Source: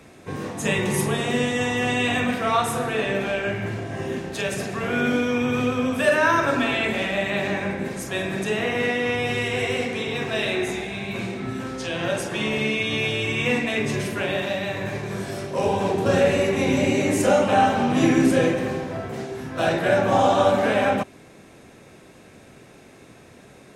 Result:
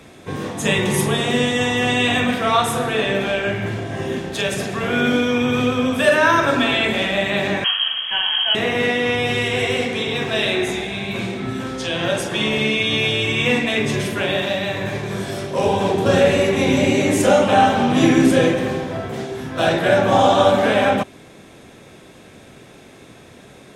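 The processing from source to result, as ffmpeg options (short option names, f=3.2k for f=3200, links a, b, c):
-filter_complex "[0:a]asettb=1/sr,asplit=3[a][b][c];[a]atrim=end=7.644[d];[b]atrim=start=7.64:end=8.55,asetpts=PTS-STARTPTS,afade=t=in:d=0.004:c=qsin,afade=t=out:st=0.906:d=0.004:c=qsin,lowpass=f=2.9k:t=q:w=0.5098,lowpass=f=2.9k:t=q:w=0.6013,lowpass=f=2.9k:t=q:w=0.9,lowpass=f=2.9k:t=q:w=2.563,afreqshift=-3400[e];[c]atrim=start=8.546[f];[d][e]acrossfade=d=0.004:c1=hsin:c2=qsin[g];[g][f]acrossfade=d=0.004:c1=qsin:c2=hsin,equalizer=f=3.4k:t=o:w=0.22:g=7,volume=4dB"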